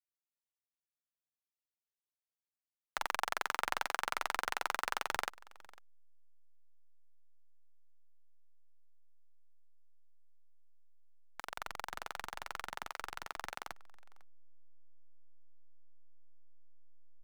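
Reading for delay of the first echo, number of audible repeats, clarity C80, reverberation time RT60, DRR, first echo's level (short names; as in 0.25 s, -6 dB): 0.501 s, 1, none, none, none, -23.0 dB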